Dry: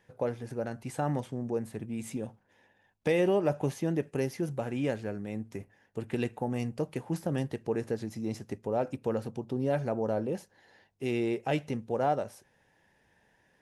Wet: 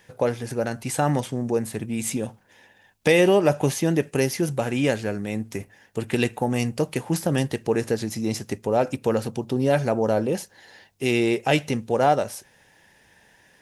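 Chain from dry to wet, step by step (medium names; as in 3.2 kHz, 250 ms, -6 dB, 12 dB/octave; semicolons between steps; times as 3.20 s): treble shelf 2.1 kHz +9.5 dB; trim +8 dB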